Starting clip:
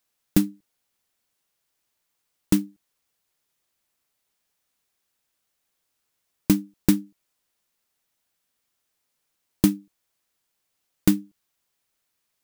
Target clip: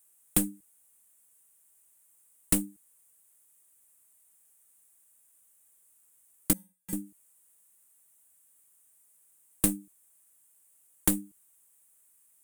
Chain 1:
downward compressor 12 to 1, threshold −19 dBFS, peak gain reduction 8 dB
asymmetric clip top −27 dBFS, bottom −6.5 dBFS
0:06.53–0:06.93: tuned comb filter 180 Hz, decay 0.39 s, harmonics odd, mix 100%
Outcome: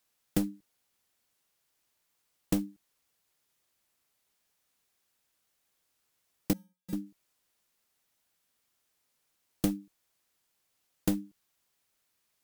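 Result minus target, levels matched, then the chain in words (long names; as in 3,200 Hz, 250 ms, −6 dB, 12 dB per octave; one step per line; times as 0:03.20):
8,000 Hz band −9.5 dB
downward compressor 12 to 1, threshold −19 dBFS, peak gain reduction 8 dB
high shelf with overshoot 6,600 Hz +12 dB, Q 3
asymmetric clip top −27 dBFS, bottom −6.5 dBFS
0:06.53–0:06.93: tuned comb filter 180 Hz, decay 0.39 s, harmonics odd, mix 100%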